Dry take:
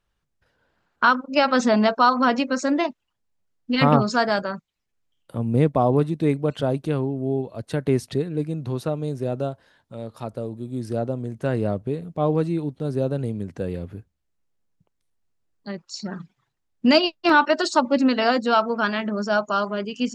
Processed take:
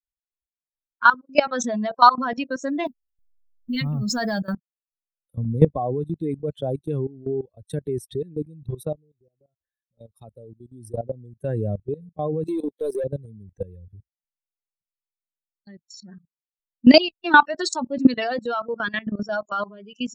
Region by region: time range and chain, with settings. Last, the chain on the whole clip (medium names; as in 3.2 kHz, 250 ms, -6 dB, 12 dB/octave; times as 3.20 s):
2.86–4.55 s: companding laws mixed up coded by mu + tone controls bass +10 dB, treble +4 dB + compression, threshold -14 dBFS
8.95–9.99 s: compression 3:1, threshold -44 dBFS + phase dispersion highs, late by 80 ms, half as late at 1.8 kHz + decimation joined by straight lines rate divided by 4×
12.47–13.04 s: high-pass 440 Hz + waveshaping leveller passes 3 + upward compressor, threshold -31 dBFS
whole clip: expander on every frequency bin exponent 2; level held to a coarse grid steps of 18 dB; loudness maximiser +12.5 dB; trim -1 dB